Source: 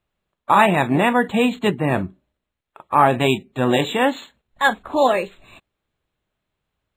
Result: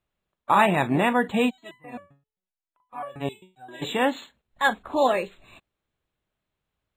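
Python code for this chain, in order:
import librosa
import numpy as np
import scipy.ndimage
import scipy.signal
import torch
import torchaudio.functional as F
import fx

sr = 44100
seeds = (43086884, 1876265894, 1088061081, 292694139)

y = fx.resonator_held(x, sr, hz=7.6, low_hz=140.0, high_hz=1000.0, at=(1.49, 3.81), fade=0.02)
y = y * 10.0 ** (-4.5 / 20.0)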